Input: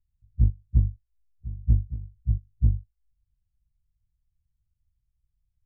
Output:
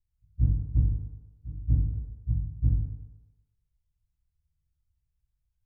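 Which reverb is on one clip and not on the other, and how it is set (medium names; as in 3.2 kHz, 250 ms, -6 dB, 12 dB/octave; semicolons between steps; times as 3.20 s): FDN reverb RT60 1.1 s, low-frequency decay 0.8×, high-frequency decay 0.45×, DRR -1.5 dB; trim -5.5 dB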